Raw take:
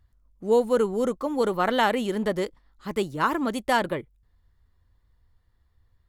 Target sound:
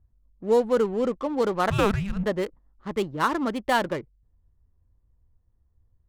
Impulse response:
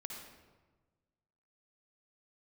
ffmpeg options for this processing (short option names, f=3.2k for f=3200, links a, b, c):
-filter_complex "[0:a]asettb=1/sr,asplit=3[a][b][c];[a]atrim=end=1.704[d];[b]atrim=start=1.7:end=2.24,asetpts=PTS-STARTPTS,afade=t=in:d=0.004:c=qsin,afade=t=out:st=0.536:d=0.004:c=qsin,afreqshift=-400[e];[c]atrim=start=2.236[f];[d][e]acrossfade=d=0.004:c1=hsin:c2=qsin[g];[g][f]acrossfade=d=0.004:c1=qsin:c2=hsin,adynamicsmooth=sensitivity=8:basefreq=700"